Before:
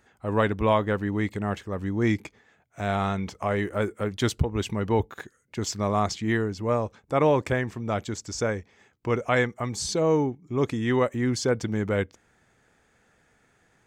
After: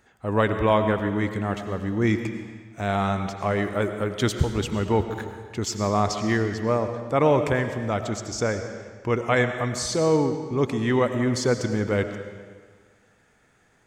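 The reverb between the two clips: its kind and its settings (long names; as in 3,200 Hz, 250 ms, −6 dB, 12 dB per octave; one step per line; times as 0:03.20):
comb and all-pass reverb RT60 1.6 s, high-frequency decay 0.9×, pre-delay 60 ms, DRR 7.5 dB
level +1.5 dB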